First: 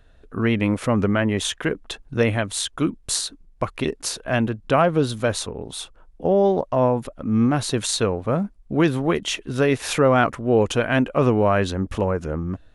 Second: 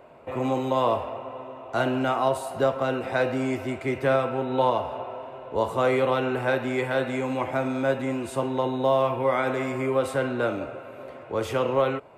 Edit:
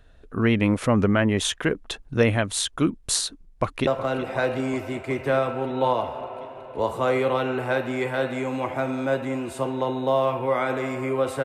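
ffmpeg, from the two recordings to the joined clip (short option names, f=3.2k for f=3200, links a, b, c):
-filter_complex "[0:a]apad=whole_dur=11.44,atrim=end=11.44,atrim=end=3.872[a];[1:a]atrim=start=2.638:end=10.21[b];[a][b]acrossfade=d=0.004:c1=hsin:c2=hsin,asplit=2[c][d];[d]afade=t=in:st=3.27:d=0.01,afade=t=out:st=3.87:d=0.01,aecho=0:1:370|740|1110|1480|1850|2220|2590|2960|3330|3700|4070|4440:0.223872|0.179098|0.143278|0.114623|0.091698|0.0733584|0.0586867|0.0469494|0.0375595|0.0300476|0.0240381|0.0192305[e];[c][e]amix=inputs=2:normalize=0"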